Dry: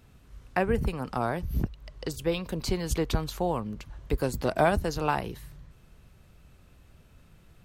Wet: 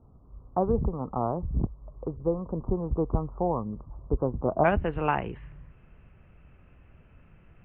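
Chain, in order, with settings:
Butterworth low-pass 1,200 Hz 72 dB per octave, from 0:04.63 2,900 Hz
level +1 dB

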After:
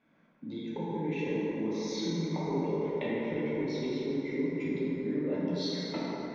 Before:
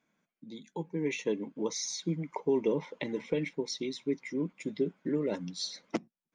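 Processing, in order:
high-frequency loss of the air 260 metres
downward compressor 6 to 1, threshold −44 dBFS, peak gain reduction 18.5 dB
dense smooth reverb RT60 4.2 s, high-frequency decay 0.4×, DRR −9 dB
level +5.5 dB

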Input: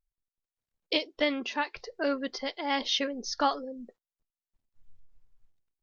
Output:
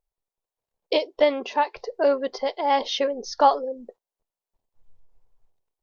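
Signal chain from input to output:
flat-topped bell 630 Hz +11 dB

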